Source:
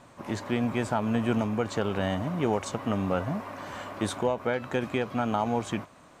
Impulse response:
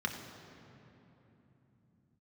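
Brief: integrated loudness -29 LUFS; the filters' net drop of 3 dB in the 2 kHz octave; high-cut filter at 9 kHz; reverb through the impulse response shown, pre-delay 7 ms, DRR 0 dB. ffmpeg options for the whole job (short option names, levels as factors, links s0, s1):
-filter_complex "[0:a]lowpass=9000,equalizer=f=2000:t=o:g=-4,asplit=2[s0][s1];[1:a]atrim=start_sample=2205,adelay=7[s2];[s1][s2]afir=irnorm=-1:irlink=0,volume=0.562[s3];[s0][s3]amix=inputs=2:normalize=0,volume=0.708"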